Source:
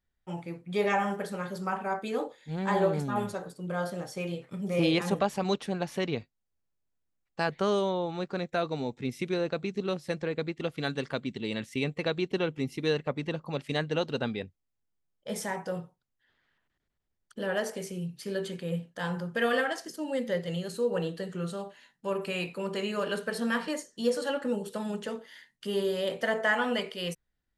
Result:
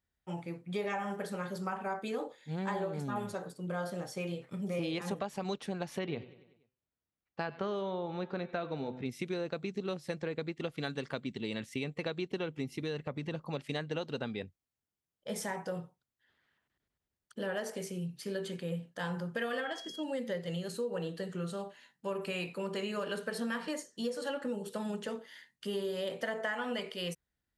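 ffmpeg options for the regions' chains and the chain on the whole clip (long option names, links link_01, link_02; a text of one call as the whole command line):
ffmpeg -i in.wav -filter_complex "[0:a]asettb=1/sr,asplit=3[link_01][link_02][link_03];[link_01]atrim=end=5.994[link_04];[link_02]atrim=start=5.99:end=9.06,asetpts=PTS-STARTPTS,afade=type=in:duration=0.004:curve=qsin,afade=type=out:start_time=3.066:duration=0.004:curve=qsin,lowpass=3600,bandreject=frequency=127.2:width_type=h:width=4,bandreject=frequency=254.4:width_type=h:width=4,bandreject=frequency=381.6:width_type=h:width=4,bandreject=frequency=508.8:width_type=h:width=4,bandreject=frequency=636:width_type=h:width=4,bandreject=frequency=763.2:width_type=h:width=4,bandreject=frequency=890.4:width_type=h:width=4,bandreject=frequency=1017.6:width_type=h:width=4,bandreject=frequency=1144.8:width_type=h:width=4,bandreject=frequency=1272:width_type=h:width=4,bandreject=frequency=1399.2:width_type=h:width=4,bandreject=frequency=1526.4:width_type=h:width=4,bandreject=frequency=1653.6:width_type=h:width=4,bandreject=frequency=1780.8:width_type=h:width=4,bandreject=frequency=1908:width_type=h:width=4,bandreject=frequency=2035.2:width_type=h:width=4,bandreject=frequency=2162.4:width_type=h:width=4,bandreject=frequency=2289.6:width_type=h:width=4,bandreject=frequency=2416.8:width_type=h:width=4,bandreject=frequency=2544:width_type=h:width=4,bandreject=frequency=2671.2:width_type=h:width=4,bandreject=frequency=2798.4:width_type=h:width=4,bandreject=frequency=2925.6:width_type=h:width=4,bandreject=frequency=3052.8:width_type=h:width=4,bandreject=frequency=3180:width_type=h:width=4,bandreject=frequency=3307.2:width_type=h:width=4,bandreject=frequency=3434.4:width_type=h:width=4,bandreject=frequency=3561.6:width_type=h:width=4,bandreject=frequency=3688.8:width_type=h:width=4,aecho=1:1:96|192|288|384|480:0.0891|0.0517|0.03|0.0174|0.0101,atrim=end_sample=135387[link_05];[link_03]atrim=start=9.056[link_06];[link_04][link_05]acrossfade=duration=0.004:curve1=hsin:curve2=qsin[link_07];[link_07][link_06]acrossfade=duration=0.004:curve1=qsin:curve2=hsin,asettb=1/sr,asplit=3[link_08][link_09][link_10];[link_08]atrim=end=12.814[link_11];[link_09]atrim=start=12.81:end=13.35,asetpts=PTS-STARTPTS,afade=type=in:duration=0.004:curve=qsin,afade=type=out:start_time=0.536:duration=0.004:curve=qsin,equalizer=frequency=95:width_type=o:width=1.4:gain=5,acompressor=threshold=-32dB:ratio=2:attack=3.2:release=140:knee=1:detection=peak[link_12];[link_10]atrim=start=13.346[link_13];[link_11][link_12]acrossfade=duration=0.004:curve1=hsin:curve2=qsin[link_14];[link_14][link_13]acrossfade=duration=0.004:curve1=qsin:curve2=hsin,asettb=1/sr,asplit=3[link_15][link_16][link_17];[link_15]atrim=end=19.604[link_18];[link_16]atrim=start=19.6:end=20.03,asetpts=PTS-STARTPTS,afade=type=in:duration=0.004:curve=qsin,afade=type=out:start_time=0.426:duration=0.004:curve=qsin,equalizer=frequency=11000:width=0.73:gain=-9.5,aeval=exprs='val(0)+0.00708*sin(2*PI*3300*n/s)':channel_layout=same[link_19];[link_17]atrim=start=20.026[link_20];[link_18][link_19]acrossfade=duration=0.004:curve1=hsin:curve2=qsin[link_21];[link_21][link_20]acrossfade=duration=0.004:curve1=qsin:curve2=hsin,highpass=47,acompressor=threshold=-30dB:ratio=6,volume=-2dB" out.wav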